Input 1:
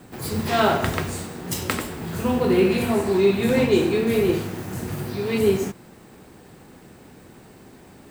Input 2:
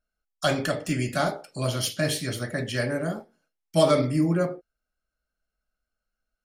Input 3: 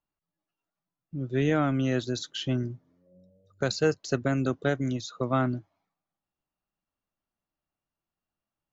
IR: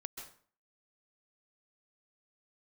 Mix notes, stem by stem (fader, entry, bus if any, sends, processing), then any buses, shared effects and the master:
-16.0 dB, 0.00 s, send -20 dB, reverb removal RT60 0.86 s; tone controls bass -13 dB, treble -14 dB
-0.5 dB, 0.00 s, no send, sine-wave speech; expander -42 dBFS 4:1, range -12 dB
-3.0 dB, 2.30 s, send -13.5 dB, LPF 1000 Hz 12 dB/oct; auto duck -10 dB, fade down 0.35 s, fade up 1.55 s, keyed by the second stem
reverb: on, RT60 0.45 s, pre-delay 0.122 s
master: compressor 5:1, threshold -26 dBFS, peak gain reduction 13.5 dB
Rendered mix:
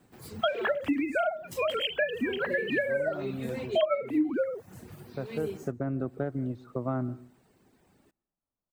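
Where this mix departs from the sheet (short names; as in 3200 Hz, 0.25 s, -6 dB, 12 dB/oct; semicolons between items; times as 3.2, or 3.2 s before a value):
stem 1: missing tone controls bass -13 dB, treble -14 dB; stem 2 -0.5 dB -> +10.5 dB; stem 3: entry 2.30 s -> 1.55 s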